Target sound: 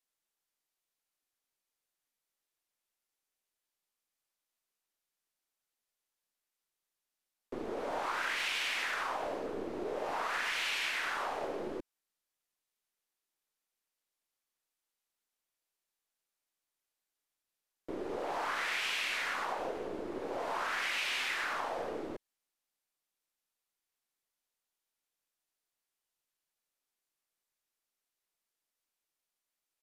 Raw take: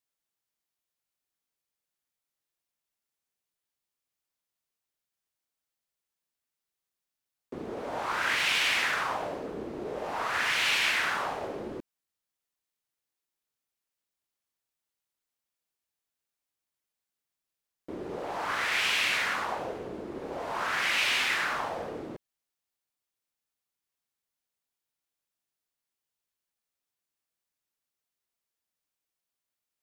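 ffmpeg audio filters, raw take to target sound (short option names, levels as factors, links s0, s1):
-filter_complex "[0:a]aresample=32000,aresample=44100,acrossover=split=210[s0][s1];[s0]aeval=exprs='abs(val(0))':c=same[s2];[s2][s1]amix=inputs=2:normalize=0,acompressor=threshold=0.0251:ratio=6"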